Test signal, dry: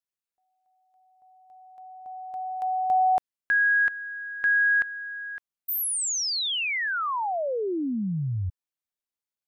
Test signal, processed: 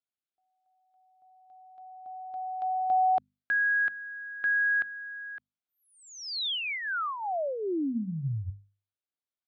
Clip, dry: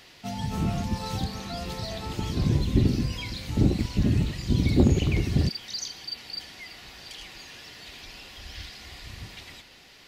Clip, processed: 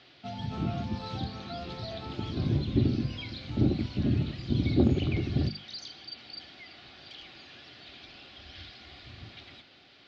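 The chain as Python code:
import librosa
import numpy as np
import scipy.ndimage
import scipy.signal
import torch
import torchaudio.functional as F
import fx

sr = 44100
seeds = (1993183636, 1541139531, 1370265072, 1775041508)

y = fx.cabinet(x, sr, low_hz=100.0, low_slope=12, high_hz=3900.0, hz=(180.0, 470.0, 970.0, 1900.0, 2700.0), db=(-6, -7, -10, -8, -5))
y = fx.hum_notches(y, sr, base_hz=50, count=5)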